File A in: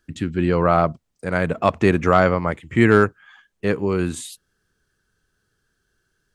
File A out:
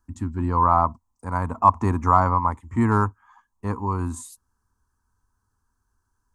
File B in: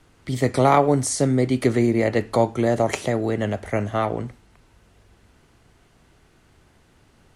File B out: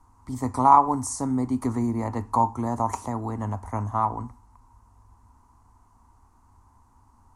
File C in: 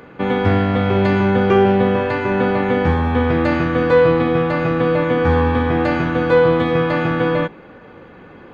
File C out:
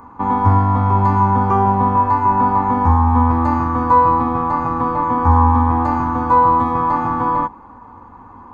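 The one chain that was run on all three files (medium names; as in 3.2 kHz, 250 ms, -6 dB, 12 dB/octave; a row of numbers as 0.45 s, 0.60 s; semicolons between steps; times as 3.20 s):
FFT filter 100 Hz 0 dB, 150 Hz -17 dB, 250 Hz -3 dB, 360 Hz -15 dB, 600 Hz -16 dB, 980 Hz +10 dB, 1.5 kHz -14 dB, 3.2 kHz -25 dB, 6.5 kHz -7 dB; peak normalisation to -2 dBFS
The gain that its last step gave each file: +2.5 dB, +1.5 dB, +5.5 dB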